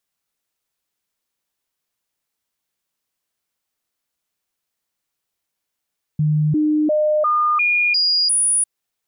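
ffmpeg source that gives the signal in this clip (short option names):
-f lavfi -i "aevalsrc='0.2*clip(min(mod(t,0.35),0.35-mod(t,0.35))/0.005,0,1)*sin(2*PI*152*pow(2,floor(t/0.35)/1)*mod(t,0.35))':d=2.45:s=44100"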